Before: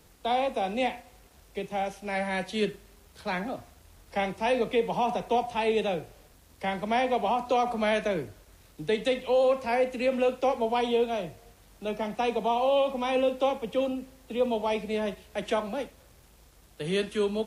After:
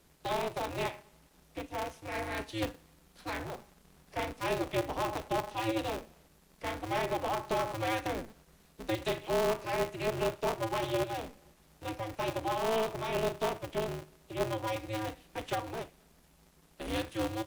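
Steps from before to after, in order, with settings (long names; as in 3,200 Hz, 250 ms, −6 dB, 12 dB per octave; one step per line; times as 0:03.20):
ring modulator with a square carrier 110 Hz
level −6.5 dB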